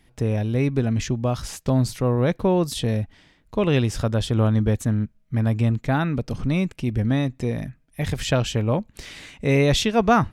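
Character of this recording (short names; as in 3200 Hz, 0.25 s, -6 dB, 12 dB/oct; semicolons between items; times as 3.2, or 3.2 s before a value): noise floor -60 dBFS; spectral tilt -6.0 dB/oct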